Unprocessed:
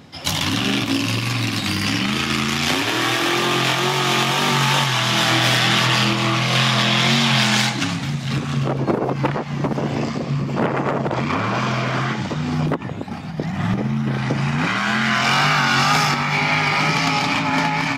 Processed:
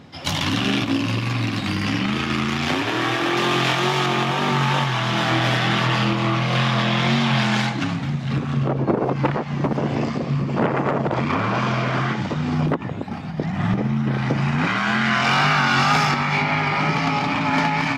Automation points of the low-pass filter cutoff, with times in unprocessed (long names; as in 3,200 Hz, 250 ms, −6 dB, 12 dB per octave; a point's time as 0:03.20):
low-pass filter 6 dB per octave
3,700 Hz
from 0:00.85 2,000 Hz
from 0:03.37 3,700 Hz
from 0:04.06 1,600 Hz
from 0:08.98 3,500 Hz
from 0:16.42 1,700 Hz
from 0:17.41 3,900 Hz